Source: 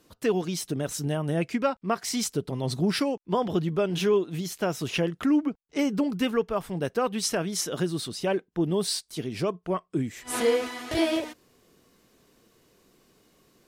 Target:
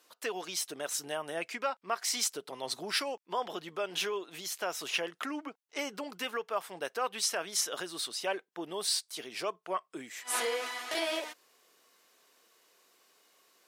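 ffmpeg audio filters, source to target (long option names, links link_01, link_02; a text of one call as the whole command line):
ffmpeg -i in.wav -af "alimiter=limit=-17.5dB:level=0:latency=1:release=129,highpass=720" out.wav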